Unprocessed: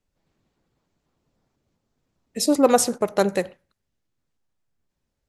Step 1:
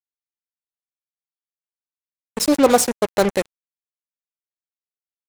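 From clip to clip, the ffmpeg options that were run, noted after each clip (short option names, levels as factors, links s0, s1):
-af "acrusher=bits=3:mix=0:aa=0.5,volume=1.33"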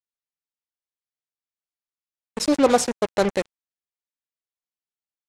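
-af "lowpass=7700,volume=0.708"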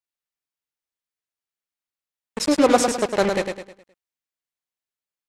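-filter_complex "[0:a]equalizer=f=2000:t=o:w=1.4:g=2.5,asplit=2[s0][s1];[s1]aecho=0:1:104|208|312|416|520:0.531|0.207|0.0807|0.0315|0.0123[s2];[s0][s2]amix=inputs=2:normalize=0"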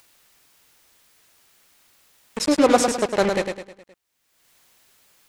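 -af "acompressor=mode=upward:threshold=0.0251:ratio=2.5"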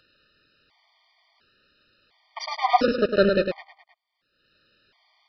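-af "aresample=11025,aresample=44100,afftfilt=real='re*gt(sin(2*PI*0.71*pts/sr)*(1-2*mod(floor(b*sr/1024/610),2)),0)':imag='im*gt(sin(2*PI*0.71*pts/sr)*(1-2*mod(floor(b*sr/1024/610),2)),0)':win_size=1024:overlap=0.75,volume=1.26"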